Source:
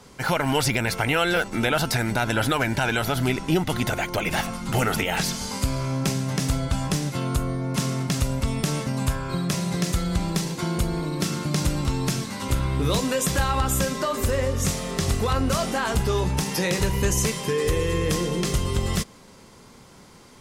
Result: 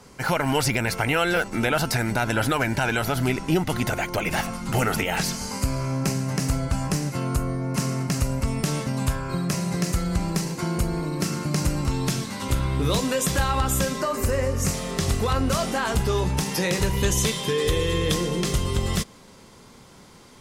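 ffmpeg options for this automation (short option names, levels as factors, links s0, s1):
-af "asetnsamples=n=441:p=0,asendcmd='5.35 equalizer g -11.5;8.64 equalizer g -2;9.2 equalizer g -9.5;11.91 equalizer g 0.5;14.01 equalizer g -11;14.74 equalizer g 0;16.97 equalizer g 11;18.14 equalizer g 2',equalizer=f=3500:t=o:w=0.31:g=-5"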